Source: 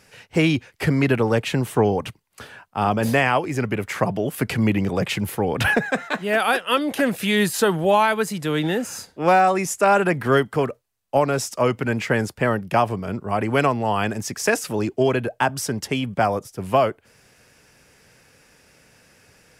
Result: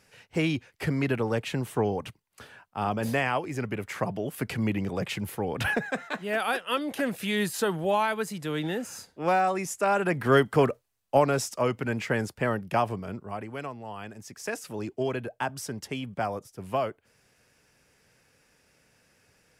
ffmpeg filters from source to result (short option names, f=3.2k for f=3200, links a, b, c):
-af "volume=8dB,afade=t=in:st=9.99:d=0.69:silence=0.375837,afade=t=out:st=10.68:d=0.96:silence=0.446684,afade=t=out:st=12.93:d=0.59:silence=0.281838,afade=t=in:st=14.14:d=0.79:silence=0.421697"